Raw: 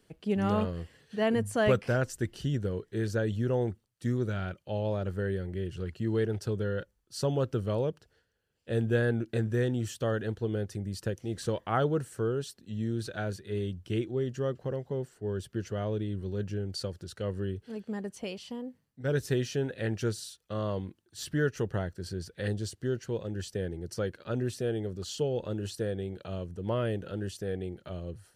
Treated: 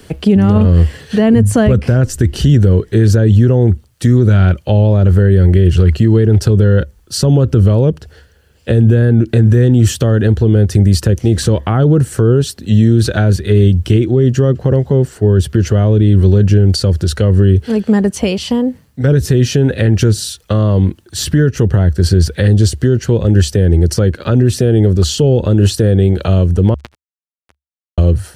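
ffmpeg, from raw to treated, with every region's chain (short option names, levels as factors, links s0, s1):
-filter_complex "[0:a]asettb=1/sr,asplit=3[s0][s1][s2];[s0]atrim=end=26.744[s3];[s1]atrim=start=26.74:end=27.98,asetpts=PTS-STARTPTS,afade=t=in:d=0.004:c=qsin,afade=t=out:st=1.236:d=0.004:c=qsin,asplit=2[s4][s5];[s5]adelay=19,volume=0.562[s6];[s4][s6]amix=inputs=2:normalize=0,atrim=end_sample=54684,acrusher=bits=2:mix=0:aa=0.5,acompressor=threshold=0.00316:ratio=6:attack=3.2:release=140:knee=1:detection=peak[s7];[s2]atrim=start=27.976[s8];[s3][s7]acrossfade=d=0.004:c1=hsin:c2=qsin[s9];[s9][s8]acrossfade=d=0.004:c1=qsin:c2=hsin,equalizer=f=71:t=o:w=0.52:g=14,acrossover=split=340[s10][s11];[s11]acompressor=threshold=0.00562:ratio=2.5[s12];[s10][s12]amix=inputs=2:normalize=0,alimiter=level_in=21.1:limit=0.891:release=50:level=0:latency=1,volume=0.891"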